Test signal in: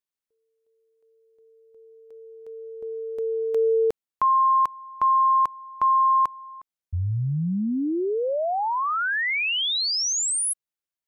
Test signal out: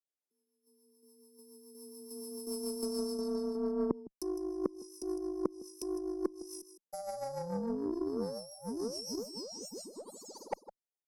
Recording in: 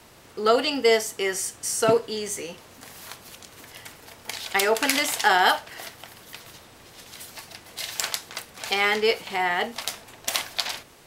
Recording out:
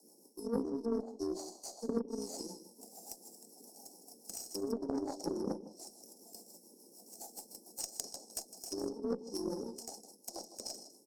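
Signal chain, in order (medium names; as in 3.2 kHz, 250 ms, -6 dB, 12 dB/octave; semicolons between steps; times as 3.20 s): bit-reversed sample order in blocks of 64 samples; spectral noise reduction 9 dB; steep high-pass 190 Hz 48 dB/octave; low-pass that closes with the level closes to 950 Hz, closed at -18.5 dBFS; peaking EQ 530 Hz +6.5 dB 2 oct; reverse; compression 16:1, threshold -35 dBFS; reverse; rotary cabinet horn 7 Hz; Chebyshev band-stop 860–5000 Hz, order 4; on a send: delay 158 ms -11.5 dB; on the sum: Chebyshev shaper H 3 -12 dB, 8 -41 dB, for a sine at -24 dBFS; trim +15 dB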